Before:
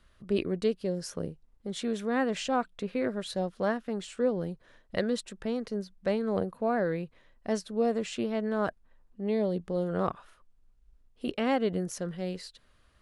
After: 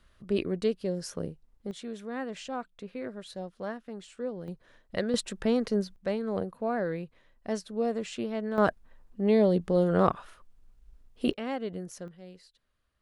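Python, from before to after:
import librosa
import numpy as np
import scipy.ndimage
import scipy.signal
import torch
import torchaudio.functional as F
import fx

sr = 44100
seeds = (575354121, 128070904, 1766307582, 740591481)

y = fx.gain(x, sr, db=fx.steps((0.0, 0.0), (1.71, -7.5), (4.48, -1.0), (5.14, 6.0), (5.96, -2.0), (8.58, 6.0), (11.33, -6.5), (12.08, -13.5)))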